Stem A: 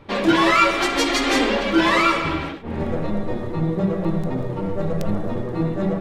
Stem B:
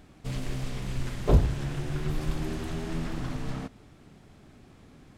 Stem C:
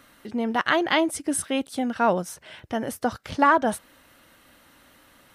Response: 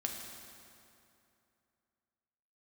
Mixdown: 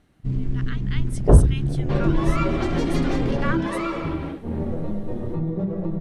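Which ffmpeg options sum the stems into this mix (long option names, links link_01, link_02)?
-filter_complex "[0:a]tiltshelf=frequency=840:gain=8,acompressor=threshold=-17dB:ratio=6,adelay=1800,volume=-5dB[link_01];[1:a]afwtdn=0.0282,highshelf=frequency=2400:gain=-11.5,acontrast=49,volume=3dB[link_02];[2:a]highpass=frequency=1300:width=0.5412,highpass=frequency=1300:width=1.3066,volume=-5.5dB,afade=type=in:start_time=0.91:duration=0.33:silence=0.334965[link_03];[link_01][link_02][link_03]amix=inputs=3:normalize=0,lowpass=10000"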